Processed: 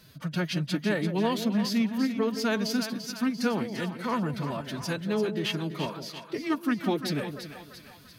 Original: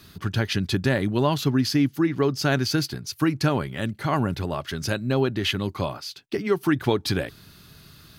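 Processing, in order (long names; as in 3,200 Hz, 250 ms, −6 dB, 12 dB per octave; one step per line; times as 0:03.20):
phase-vocoder pitch shift with formants kept +8 semitones
echo with a time of its own for lows and highs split 690 Hz, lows 168 ms, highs 342 ms, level −9 dB
level −5 dB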